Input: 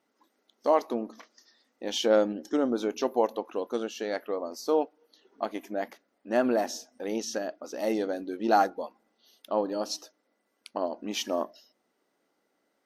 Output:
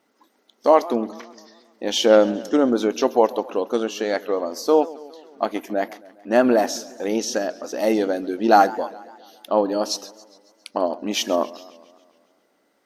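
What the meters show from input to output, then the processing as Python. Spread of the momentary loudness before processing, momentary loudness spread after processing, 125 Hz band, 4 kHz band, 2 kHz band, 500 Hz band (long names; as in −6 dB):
12 LU, 13 LU, can't be measured, +8.5 dB, +8.5 dB, +8.5 dB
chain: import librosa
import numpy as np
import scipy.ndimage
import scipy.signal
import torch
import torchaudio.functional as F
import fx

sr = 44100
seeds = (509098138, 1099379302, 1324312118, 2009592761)

y = fx.echo_warbled(x, sr, ms=137, feedback_pct=59, rate_hz=2.8, cents=162, wet_db=-19.5)
y = y * librosa.db_to_amplitude(8.5)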